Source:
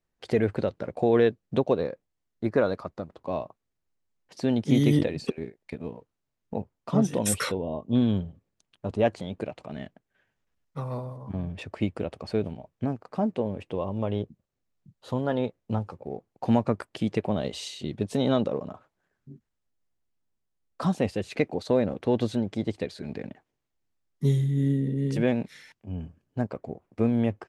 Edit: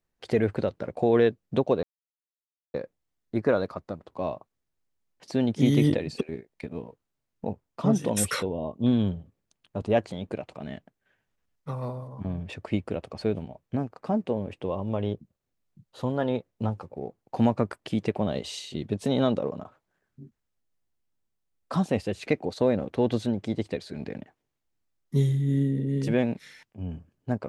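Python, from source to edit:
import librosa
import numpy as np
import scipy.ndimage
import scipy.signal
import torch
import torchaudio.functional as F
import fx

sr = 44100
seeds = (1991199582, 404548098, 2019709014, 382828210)

y = fx.edit(x, sr, fx.insert_silence(at_s=1.83, length_s=0.91), tone=tone)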